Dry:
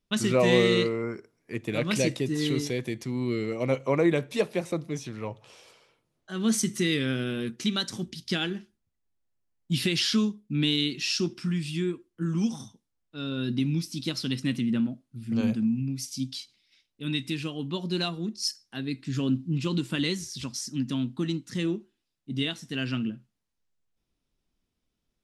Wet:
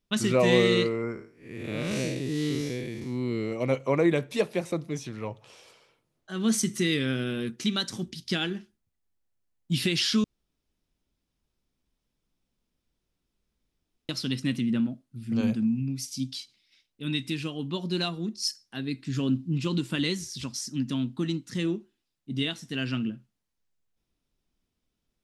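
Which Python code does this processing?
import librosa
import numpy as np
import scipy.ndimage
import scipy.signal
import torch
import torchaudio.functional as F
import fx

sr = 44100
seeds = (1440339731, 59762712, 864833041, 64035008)

y = fx.spec_blur(x, sr, span_ms=184.0, at=(1.12, 3.51), fade=0.02)
y = fx.edit(y, sr, fx.room_tone_fill(start_s=10.24, length_s=3.85), tone=tone)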